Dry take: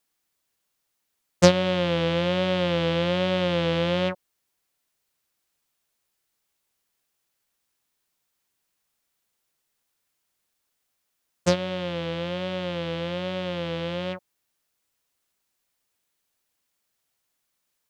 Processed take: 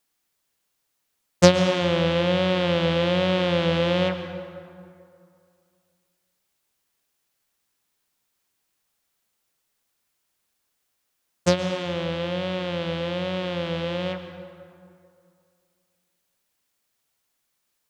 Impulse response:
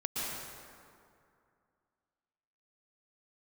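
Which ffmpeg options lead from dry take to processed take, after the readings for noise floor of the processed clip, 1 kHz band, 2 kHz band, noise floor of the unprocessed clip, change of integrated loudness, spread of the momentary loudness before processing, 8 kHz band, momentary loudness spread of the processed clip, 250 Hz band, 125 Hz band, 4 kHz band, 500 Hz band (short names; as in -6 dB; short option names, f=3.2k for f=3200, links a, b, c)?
-76 dBFS, +2.0 dB, +2.0 dB, -78 dBFS, +2.0 dB, 10 LU, +2.0 dB, 14 LU, +2.0 dB, +2.0 dB, +2.0 dB, +2.0 dB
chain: -filter_complex "[0:a]asplit=2[a][b];[1:a]atrim=start_sample=2205[c];[b][c]afir=irnorm=-1:irlink=0,volume=-12dB[d];[a][d]amix=inputs=2:normalize=0"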